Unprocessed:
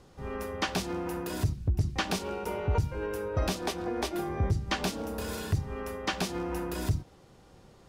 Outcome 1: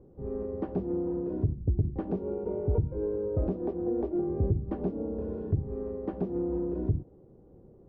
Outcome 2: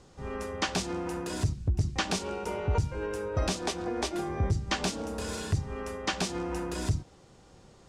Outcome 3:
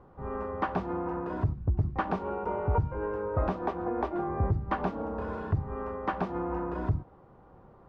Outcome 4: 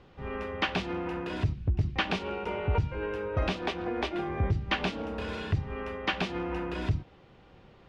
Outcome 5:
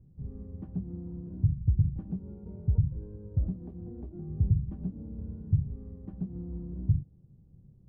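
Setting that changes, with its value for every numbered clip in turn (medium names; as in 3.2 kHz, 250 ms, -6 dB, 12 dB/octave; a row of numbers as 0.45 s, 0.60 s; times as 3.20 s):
resonant low-pass, frequency: 410 Hz, 7.9 kHz, 1.1 kHz, 2.8 kHz, 150 Hz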